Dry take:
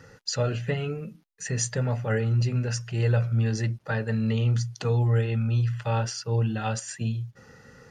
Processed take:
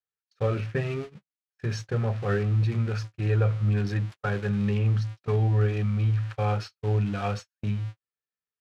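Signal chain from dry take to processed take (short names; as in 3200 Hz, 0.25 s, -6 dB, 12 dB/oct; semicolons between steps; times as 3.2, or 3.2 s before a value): switching spikes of -22 dBFS; LPF 2700 Hz 12 dB/oct; notches 50/100/150 Hz; gate -33 dBFS, range -58 dB; speed mistake 48 kHz file played as 44.1 kHz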